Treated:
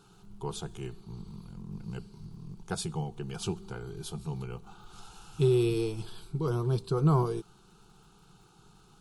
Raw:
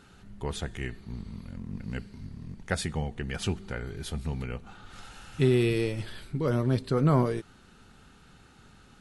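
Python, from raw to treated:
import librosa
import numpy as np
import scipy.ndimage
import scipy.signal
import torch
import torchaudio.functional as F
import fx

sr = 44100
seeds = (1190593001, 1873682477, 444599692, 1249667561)

y = fx.fixed_phaser(x, sr, hz=380.0, stages=8)
y = fx.dmg_crackle(y, sr, seeds[0], per_s=74.0, level_db=-57.0)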